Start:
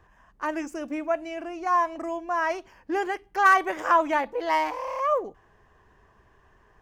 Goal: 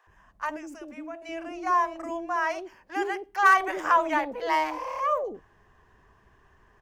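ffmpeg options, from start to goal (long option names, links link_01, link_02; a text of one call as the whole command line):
ffmpeg -i in.wav -filter_complex "[0:a]asettb=1/sr,asplit=3[link_01][link_02][link_03];[link_01]atrim=end=0.494[link_04];[link_02]atrim=start=0.49:end=1.22,asetpts=PTS-STARTPTS,afade=type=in:duration=0.004:curve=qsin,afade=type=out:start_time=0.726:duration=0.004:curve=qsin,acompressor=threshold=-38dB:ratio=3[link_05];[link_03]atrim=start=1.216[link_06];[link_04][link_05]acrossfade=duration=0.004:curve1=hsin:curve2=qsin[link_07];[link_07][link_06]acrossfade=duration=0.004:curve1=qsin:curve2=hsin,asettb=1/sr,asplit=3[link_08][link_09][link_10];[link_08]atrim=end=2.234[link_11];[link_09]atrim=start=2.23:end=3.53,asetpts=PTS-STARTPTS,afade=type=in:duration=0.004:curve=qsin,afade=type=out:start_time=1.296:duration=0.004:curve=qsin,lowshelf=frequency=170:gain=-7.5[link_12];[link_10]atrim=start=3.526[link_13];[link_11][link_12]acrossfade=duration=0.004:curve1=hsin:curve2=qsin[link_14];[link_14][link_13]acrossfade=duration=0.004:curve1=qsin:curve2=hsin,acrossover=split=560[link_15][link_16];[link_15]adelay=70[link_17];[link_17][link_16]amix=inputs=2:normalize=0" out.wav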